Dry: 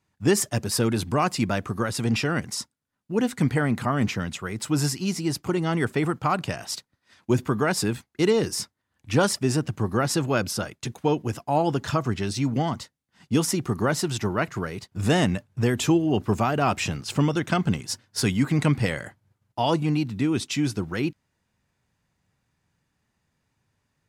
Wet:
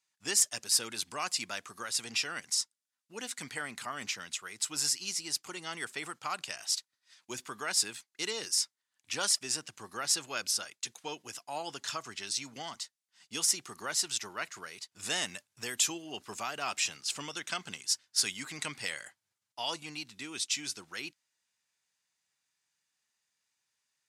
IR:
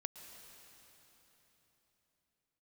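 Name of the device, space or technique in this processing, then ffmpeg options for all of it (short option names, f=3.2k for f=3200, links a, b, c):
piezo pickup straight into a mixer: -filter_complex "[0:a]lowpass=7.7k,aderivative,asettb=1/sr,asplit=3[a][b][c];[a]atrim=end=15.254[d];[b]atrim=start=15.25:end=15.88,asetpts=PTS-STARTPTS,afade=t=in:d=0.004:c=qsin,afade=t=out:st=0.626:d=0.004:c=qsin,highshelf=f=9.9k:g=7.5[e];[c]atrim=start=15.876[f];[d][e]acrossfade=d=0.004:c1=hsin:c2=qsin[g];[g][f]acrossfade=d=0.004:c1=qsin:c2=hsin,volume=4.5dB"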